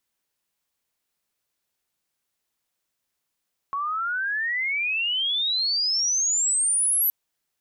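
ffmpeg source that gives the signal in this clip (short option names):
-f lavfi -i "aevalsrc='pow(10,(-24.5+6*t/3.37)/20)*sin(2*PI*1100*3.37/log(12000/1100)*(exp(log(12000/1100)*t/3.37)-1))':d=3.37:s=44100"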